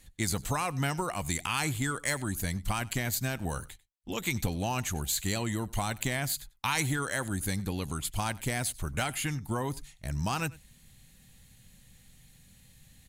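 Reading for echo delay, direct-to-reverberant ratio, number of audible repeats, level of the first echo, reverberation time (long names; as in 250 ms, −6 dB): 96 ms, no reverb audible, 1, −22.0 dB, no reverb audible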